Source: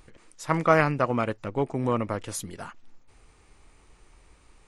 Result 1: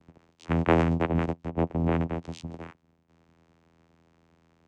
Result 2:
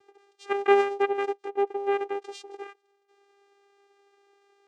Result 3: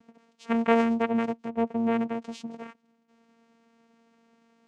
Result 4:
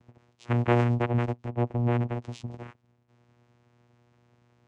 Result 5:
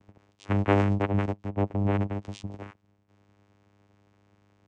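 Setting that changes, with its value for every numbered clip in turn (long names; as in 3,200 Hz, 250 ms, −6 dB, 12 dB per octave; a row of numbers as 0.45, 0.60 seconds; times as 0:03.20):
channel vocoder, frequency: 83, 400, 230, 120, 100 Hertz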